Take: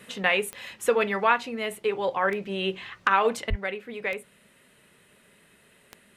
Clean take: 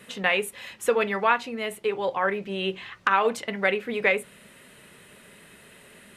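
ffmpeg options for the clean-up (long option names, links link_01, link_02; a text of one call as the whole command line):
ffmpeg -i in.wav -filter_complex "[0:a]adeclick=threshold=4,asplit=3[link_01][link_02][link_03];[link_01]afade=type=out:start_time=3.49:duration=0.02[link_04];[link_02]highpass=frequency=140:width=0.5412,highpass=frequency=140:width=1.3066,afade=type=in:start_time=3.49:duration=0.02,afade=type=out:start_time=3.61:duration=0.02[link_05];[link_03]afade=type=in:start_time=3.61:duration=0.02[link_06];[link_04][link_05][link_06]amix=inputs=3:normalize=0,asetnsamples=nb_out_samples=441:pad=0,asendcmd='3.5 volume volume 8dB',volume=0dB" out.wav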